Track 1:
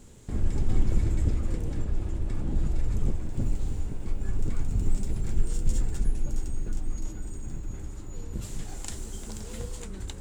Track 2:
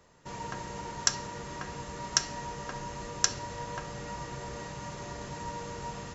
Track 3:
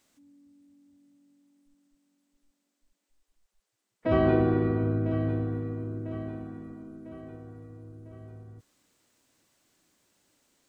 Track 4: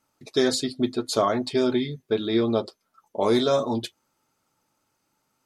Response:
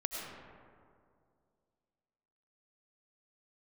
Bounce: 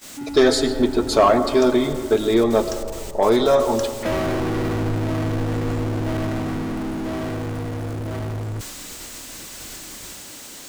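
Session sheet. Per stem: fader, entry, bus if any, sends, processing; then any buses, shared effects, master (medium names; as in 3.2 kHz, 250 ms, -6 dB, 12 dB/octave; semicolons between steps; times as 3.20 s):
-11.5 dB, 0.00 s, no send, none
-10.0 dB, 0.55 s, no send, none
+3.0 dB, 0.00 s, no send, treble shelf 2.3 kHz +5.5 dB; compression 6:1, threshold -29 dBFS, peak gain reduction 11 dB; power-law waveshaper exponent 0.35
-1.5 dB, 0.00 s, send -8.5 dB, peaking EQ 810 Hz +8.5 dB 2.8 oct; gain riding 2 s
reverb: on, RT60 2.3 s, pre-delay 60 ms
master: gate -35 dBFS, range -20 dB; saturation -6 dBFS, distortion -18 dB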